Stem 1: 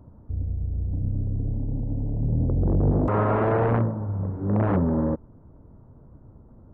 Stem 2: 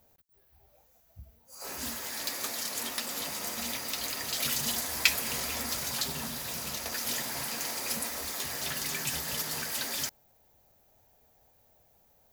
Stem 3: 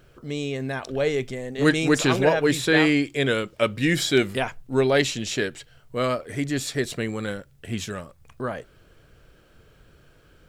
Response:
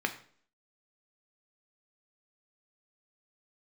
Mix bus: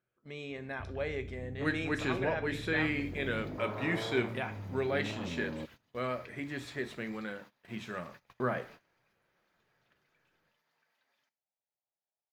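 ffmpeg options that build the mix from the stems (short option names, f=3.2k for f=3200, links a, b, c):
-filter_complex "[0:a]acompressor=threshold=-27dB:ratio=6,highpass=f=120:p=1,adelay=500,volume=-8.5dB[a];[1:a]acompressor=threshold=-37dB:ratio=12,adelay=1200,volume=-14dB,asplit=2[b][c];[c]volume=-15.5dB[d];[2:a]volume=-5dB,afade=t=in:st=7.86:d=0.24:silence=0.354813,asplit=2[e][f];[f]volume=-6dB[g];[b][e]amix=inputs=2:normalize=0,highpass=480,lowpass=2.7k,alimiter=level_in=10dB:limit=-24dB:level=0:latency=1,volume=-10dB,volume=0dB[h];[3:a]atrim=start_sample=2205[i];[d][g]amix=inputs=2:normalize=0[j];[j][i]afir=irnorm=-1:irlink=0[k];[a][h][k]amix=inputs=3:normalize=0,agate=range=-19dB:threshold=-51dB:ratio=16:detection=peak"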